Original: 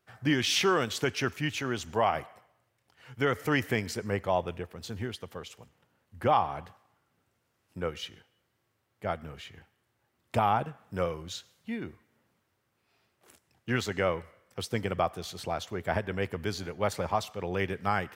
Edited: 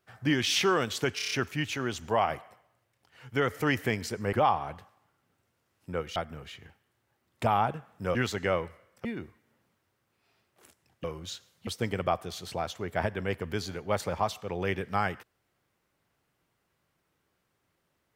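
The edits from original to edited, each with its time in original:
0:01.16: stutter 0.03 s, 6 plays
0:04.18–0:06.21: remove
0:08.04–0:09.08: remove
0:11.07–0:11.70: swap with 0:13.69–0:14.59

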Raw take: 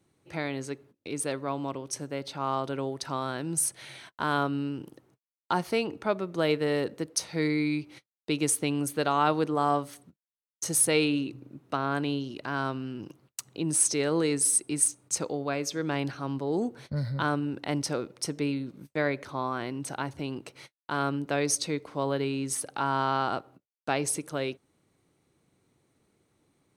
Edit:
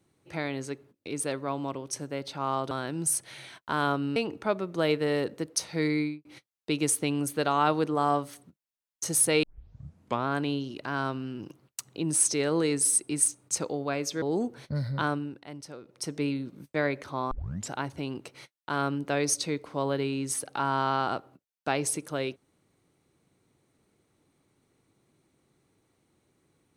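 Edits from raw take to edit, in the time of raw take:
0:02.71–0:03.22: remove
0:04.67–0:05.76: remove
0:07.57–0:07.85: fade out and dull
0:11.03: tape start 0.84 s
0:15.82–0:16.43: remove
0:17.14–0:18.52: duck −13 dB, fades 0.48 s equal-power
0:19.52: tape start 0.39 s

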